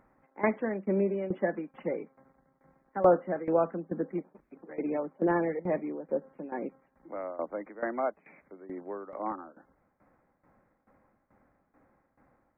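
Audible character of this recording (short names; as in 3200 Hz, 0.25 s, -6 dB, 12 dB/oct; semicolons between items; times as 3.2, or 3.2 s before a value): tremolo saw down 2.3 Hz, depth 85%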